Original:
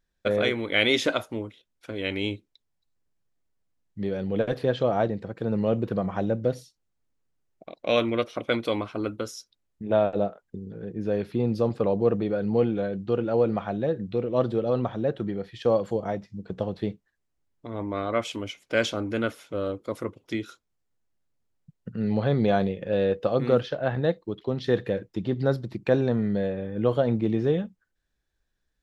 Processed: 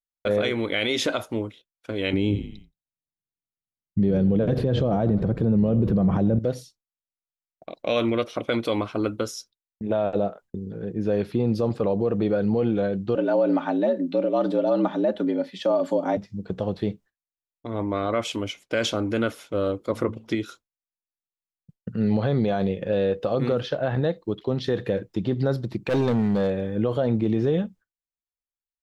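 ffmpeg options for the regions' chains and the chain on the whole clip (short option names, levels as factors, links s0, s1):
-filter_complex "[0:a]asettb=1/sr,asplit=3[s0][s1][s2];[s0]atrim=end=2.134[s3];[s1]atrim=start=2.13:end=6.39,asetpts=PTS-STARTPTS,afade=t=in:d=0.004:c=qsin,afade=t=out:st=4.256:d=0.004:c=qsin,equalizer=f=150:w=0.36:g=14.5,asplit=5[s4][s5][s6][s7][s8];[s5]adelay=87,afreqshift=-35,volume=0.126[s9];[s6]adelay=174,afreqshift=-70,volume=0.0617[s10];[s7]adelay=261,afreqshift=-105,volume=0.0302[s11];[s8]adelay=348,afreqshift=-140,volume=0.0148[s12];[s4][s9][s10][s11][s12]amix=inputs=5:normalize=0,atrim=end_sample=187866[s13];[s2]atrim=start=6.386[s14];[s3][s13]acrossfade=d=0.004:c1=hsin:c2=qsin[s15];[s15][s14]acrossfade=d=0.004:c1=qsin:c2=hsin,asettb=1/sr,asplit=3[s16][s17][s18];[s16]atrim=end=13.154[s19];[s17]atrim=start=13.15:end=16.17,asetpts=PTS-STARTPTS,afade=t=in:d=0.004:c=qsin,afade=t=out:st=3.016:d=0.004:c=qsin,afreqshift=71,aecho=1:1:3.4:0.49,atrim=end_sample=133182[s20];[s18]atrim=start=16.166[s21];[s19][s20]acrossfade=d=0.004:c1=hsin:c2=qsin[s22];[s22][s21]acrossfade=d=0.004:c1=qsin:c2=hsin,asettb=1/sr,asplit=3[s23][s24][s25];[s23]atrim=end=19.904[s26];[s24]atrim=start=19.9:end=20.35,asetpts=PTS-STARTPTS,afade=t=in:d=0.004:c=qsin,afade=t=out:st=0.446:d=0.004:c=qsin,highshelf=f=4900:g=-9.5,bandreject=f=111.6:t=h:w=4,bandreject=f=223.2:t=h:w=4,acontrast=42[s27];[s25]atrim=start=20.346[s28];[s26][s27]acrossfade=d=0.004:c1=hsin:c2=qsin[s29];[s29][s28]acrossfade=d=0.004:c1=qsin:c2=hsin,asettb=1/sr,asplit=3[s30][s31][s32];[s30]atrim=end=25.894[s33];[s31]atrim=start=25.89:end=26.76,asetpts=PTS-STARTPTS,afade=t=in:d=0.004:c=qsin,afade=t=out:st=0.866:d=0.004:c=qsin,highshelf=f=3200:g=6.5,asoftclip=type=hard:threshold=0.0841[s34];[s32]atrim=start=26.756[s35];[s33][s34]acrossfade=d=0.004:c1=hsin:c2=qsin[s36];[s36][s35]acrossfade=d=0.004:c1=qsin:c2=hsin,agate=range=0.0224:threshold=0.00562:ratio=3:detection=peak,equalizer=f=1900:t=o:w=0.77:g=-2,alimiter=limit=0.126:level=0:latency=1:release=63,volume=1.68"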